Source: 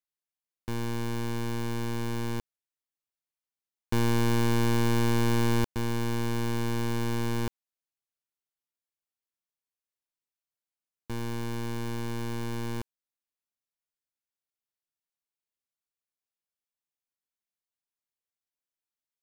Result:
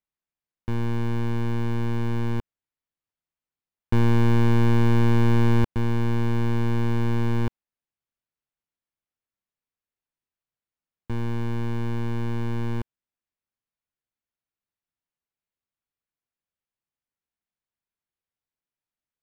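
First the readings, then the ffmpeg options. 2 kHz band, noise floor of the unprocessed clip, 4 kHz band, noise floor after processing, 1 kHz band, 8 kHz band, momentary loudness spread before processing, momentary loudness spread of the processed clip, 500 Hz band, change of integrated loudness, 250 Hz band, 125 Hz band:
+1.5 dB, below −85 dBFS, −3.0 dB, below −85 dBFS, +2.0 dB, can't be measured, 11 LU, 11 LU, +3.0 dB, +5.5 dB, +5.0 dB, +7.5 dB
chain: -af "bass=frequency=250:gain=6,treble=frequency=4000:gain=-13,volume=2dB"

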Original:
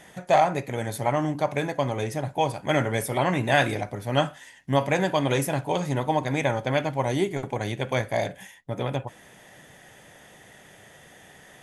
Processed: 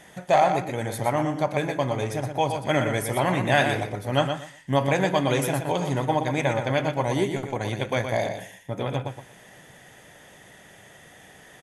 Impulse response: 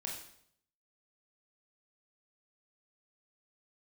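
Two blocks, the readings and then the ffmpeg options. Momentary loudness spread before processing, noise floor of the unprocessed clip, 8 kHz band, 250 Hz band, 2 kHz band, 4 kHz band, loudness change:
9 LU, −52 dBFS, +1.0 dB, +1.0 dB, +1.0 dB, +1.0 dB, +1.0 dB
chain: -filter_complex "[0:a]asplit=2[link_01][link_02];[link_02]aecho=0:1:120|240|360:0.447|0.0893|0.0179[link_03];[link_01][link_03]amix=inputs=2:normalize=0,asoftclip=type=hard:threshold=-9dB"

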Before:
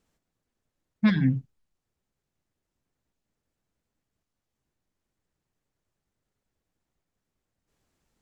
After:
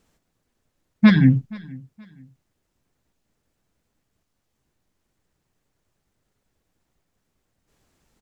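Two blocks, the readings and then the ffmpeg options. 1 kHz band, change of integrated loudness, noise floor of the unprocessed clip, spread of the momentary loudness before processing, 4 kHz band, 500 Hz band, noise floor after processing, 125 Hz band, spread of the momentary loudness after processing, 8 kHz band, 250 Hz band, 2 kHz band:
+8.5 dB, +8.5 dB, −85 dBFS, 7 LU, +8.5 dB, +8.5 dB, −76 dBFS, +8.5 dB, 7 LU, can't be measured, +8.5 dB, +8.5 dB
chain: -af "aecho=1:1:474|948:0.0708|0.0219,volume=8.5dB"

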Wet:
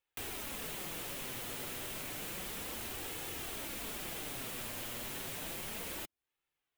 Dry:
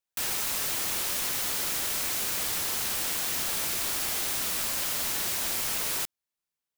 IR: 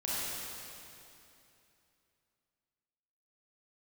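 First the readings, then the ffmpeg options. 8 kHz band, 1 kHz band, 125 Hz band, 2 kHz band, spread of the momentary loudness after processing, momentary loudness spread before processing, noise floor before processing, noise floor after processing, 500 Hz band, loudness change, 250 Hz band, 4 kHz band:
−15.0 dB, −9.0 dB, −3.0 dB, −9.5 dB, 0 LU, 0 LU, below −85 dBFS, below −85 dBFS, −5.0 dB, −13.0 dB, −3.0 dB, −12.5 dB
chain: -filter_complex "[0:a]acrossover=split=600|4900[link_01][link_02][link_03];[link_01]acompressor=threshold=-47dB:ratio=4[link_04];[link_02]acompressor=threshold=-51dB:ratio=4[link_05];[link_03]acompressor=threshold=-35dB:ratio=4[link_06];[link_04][link_05][link_06]amix=inputs=3:normalize=0,flanger=delay=2.3:depth=6.1:regen=-32:speed=0.31:shape=sinusoidal,asplit=2[link_07][link_08];[link_08]alimiter=level_in=14dB:limit=-24dB:level=0:latency=1,volume=-14dB,volume=2dB[link_09];[link_07][link_09]amix=inputs=2:normalize=0,highshelf=frequency=3900:width_type=q:width=1.5:gain=-8,volume=1dB"

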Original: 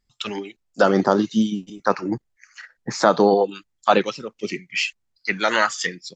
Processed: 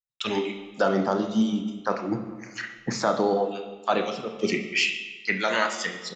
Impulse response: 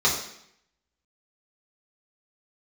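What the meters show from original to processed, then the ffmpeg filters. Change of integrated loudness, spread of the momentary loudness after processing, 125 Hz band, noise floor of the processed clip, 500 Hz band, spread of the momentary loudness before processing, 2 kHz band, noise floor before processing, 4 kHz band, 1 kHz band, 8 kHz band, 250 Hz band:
−5.0 dB, 8 LU, −3.5 dB, −47 dBFS, −5.5 dB, 14 LU, −3.0 dB, −74 dBFS, −2.0 dB, −6.0 dB, −3.5 dB, −4.0 dB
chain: -filter_complex "[0:a]asplit=2[link_01][link_02];[link_02]adelay=146,lowpass=frequency=2000:poles=1,volume=-21dB,asplit=2[link_03][link_04];[link_04]adelay=146,lowpass=frequency=2000:poles=1,volume=0.49,asplit=2[link_05][link_06];[link_06]adelay=146,lowpass=frequency=2000:poles=1,volume=0.49,asplit=2[link_07][link_08];[link_08]adelay=146,lowpass=frequency=2000:poles=1,volume=0.49[link_09];[link_01][link_03][link_05][link_07][link_09]amix=inputs=5:normalize=0,dynaudnorm=framelen=160:gausssize=3:maxgain=15dB,agate=range=-31dB:threshold=-46dB:ratio=16:detection=peak,asplit=2[link_10][link_11];[1:a]atrim=start_sample=2205,asetrate=24255,aresample=44100,adelay=28[link_12];[link_11][link_12]afir=irnorm=-1:irlink=0,volume=-25dB[link_13];[link_10][link_13]amix=inputs=2:normalize=0,volume=-9dB"

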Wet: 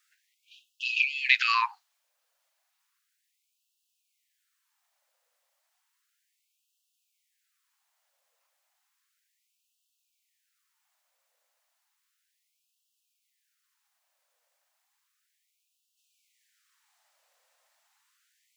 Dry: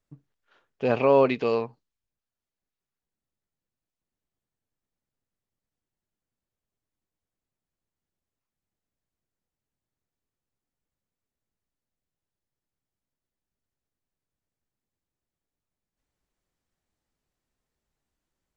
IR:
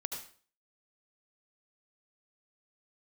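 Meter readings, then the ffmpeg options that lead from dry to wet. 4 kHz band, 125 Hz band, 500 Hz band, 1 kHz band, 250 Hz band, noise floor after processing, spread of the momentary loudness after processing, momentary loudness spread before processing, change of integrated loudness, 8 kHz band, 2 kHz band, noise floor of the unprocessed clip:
+13.0 dB, below −40 dB, below −40 dB, −1.0 dB, below −40 dB, −79 dBFS, 11 LU, 11 LU, −2.0 dB, can't be measured, +11.5 dB, below −85 dBFS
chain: -af "alimiter=level_in=16.5dB:limit=-1dB:release=50:level=0:latency=1,afftfilt=real='re*gte(b*sr/1024,470*pow(2600/470,0.5+0.5*sin(2*PI*0.33*pts/sr)))':imag='im*gte(b*sr/1024,470*pow(2600/470,0.5+0.5*sin(2*PI*0.33*pts/sr)))':win_size=1024:overlap=0.75"

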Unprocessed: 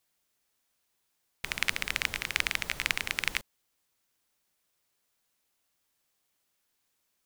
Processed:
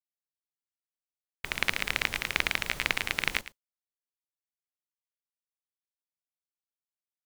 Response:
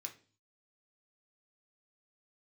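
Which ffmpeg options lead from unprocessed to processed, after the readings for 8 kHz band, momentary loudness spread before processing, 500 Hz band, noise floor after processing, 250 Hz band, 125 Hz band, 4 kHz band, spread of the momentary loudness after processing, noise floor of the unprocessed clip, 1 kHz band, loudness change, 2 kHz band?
−2.0 dB, 7 LU, +5.5 dB, below −85 dBFS, +5.0 dB, +3.5 dB, +1.0 dB, 6 LU, −78 dBFS, +3.5 dB, +1.5 dB, +1.5 dB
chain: -af "aecho=1:1:110:0.211,aeval=exprs='(tanh(2.51*val(0)+0.4)-tanh(0.4))/2.51':channel_layout=same,agate=range=-33dB:threshold=-40dB:ratio=3:detection=peak,volume=3.5dB"

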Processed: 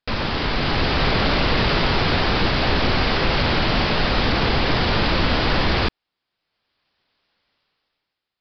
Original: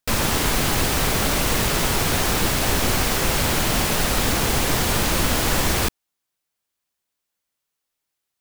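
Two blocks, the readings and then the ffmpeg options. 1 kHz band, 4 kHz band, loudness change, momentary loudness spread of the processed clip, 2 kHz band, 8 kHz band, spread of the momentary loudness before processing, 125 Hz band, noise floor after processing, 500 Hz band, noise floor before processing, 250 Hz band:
+2.5 dB, +2.0 dB, 0.0 dB, 3 LU, +2.5 dB, −25.0 dB, 0 LU, +2.0 dB, −82 dBFS, +2.5 dB, −81 dBFS, +2.0 dB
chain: -filter_complex "[0:a]asplit=2[link_01][link_02];[link_02]alimiter=limit=-17.5dB:level=0:latency=1:release=24,volume=1dB[link_03];[link_01][link_03]amix=inputs=2:normalize=0,dynaudnorm=framelen=110:gausssize=13:maxgain=15dB,aresample=11025,aresample=44100,volume=-5.5dB"

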